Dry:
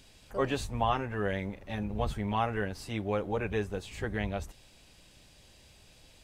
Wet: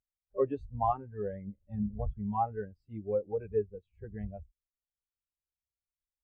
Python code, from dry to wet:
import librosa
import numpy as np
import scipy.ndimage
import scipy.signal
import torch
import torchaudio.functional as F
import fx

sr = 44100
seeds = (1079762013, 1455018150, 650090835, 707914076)

y = fx.low_shelf(x, sr, hz=280.0, db=3.5, at=(1.47, 1.89))
y = fx.spectral_expand(y, sr, expansion=2.5)
y = y * librosa.db_to_amplitude(-1.5)